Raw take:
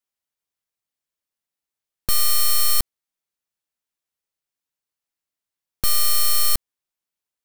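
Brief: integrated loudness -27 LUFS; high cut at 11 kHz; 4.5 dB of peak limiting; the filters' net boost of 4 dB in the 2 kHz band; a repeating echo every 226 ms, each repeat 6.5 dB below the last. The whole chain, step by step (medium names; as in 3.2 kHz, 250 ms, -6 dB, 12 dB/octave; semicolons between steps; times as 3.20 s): low-pass 11 kHz; peaking EQ 2 kHz +4.5 dB; peak limiter -17 dBFS; feedback delay 226 ms, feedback 47%, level -6.5 dB; trim -1 dB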